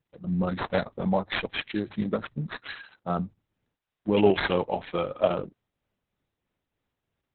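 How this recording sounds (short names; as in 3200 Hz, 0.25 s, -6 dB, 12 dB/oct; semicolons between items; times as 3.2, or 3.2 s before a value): aliases and images of a low sample rate 5600 Hz, jitter 0%; tremolo triangle 3.1 Hz, depth 45%; Opus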